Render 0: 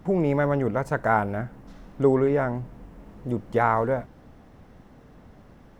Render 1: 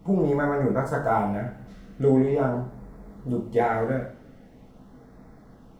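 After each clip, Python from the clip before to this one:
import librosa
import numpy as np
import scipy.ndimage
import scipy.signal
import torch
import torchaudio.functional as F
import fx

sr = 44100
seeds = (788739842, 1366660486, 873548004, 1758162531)

y = fx.filter_lfo_notch(x, sr, shape='sine', hz=0.43, low_hz=830.0, high_hz=3000.0, q=1.3)
y = fx.rev_double_slope(y, sr, seeds[0], early_s=0.46, late_s=1.6, knee_db=-25, drr_db=-2.5)
y = y * librosa.db_to_amplitude(-3.5)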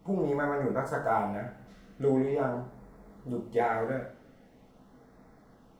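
y = fx.low_shelf(x, sr, hz=270.0, db=-7.5)
y = y * librosa.db_to_amplitude(-3.5)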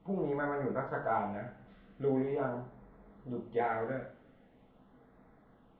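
y = scipy.signal.sosfilt(scipy.signal.cheby1(4, 1.0, 3500.0, 'lowpass', fs=sr, output='sos'), x)
y = y * librosa.db_to_amplitude(-4.0)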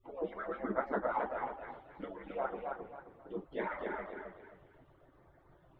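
y = fx.hpss_only(x, sr, part='percussive')
y = fx.echo_warbled(y, sr, ms=267, feedback_pct=31, rate_hz=2.8, cents=71, wet_db=-4.0)
y = y * librosa.db_to_amplitude(3.0)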